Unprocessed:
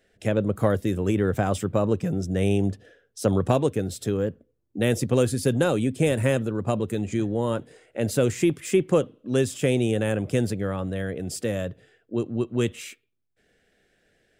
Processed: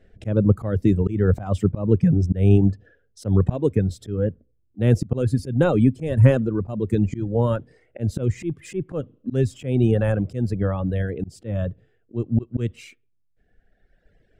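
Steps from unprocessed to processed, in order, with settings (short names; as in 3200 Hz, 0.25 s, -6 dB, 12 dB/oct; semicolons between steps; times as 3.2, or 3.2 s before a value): reverb removal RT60 1.8 s; RIAA curve playback; auto swell 0.218 s; gain +3 dB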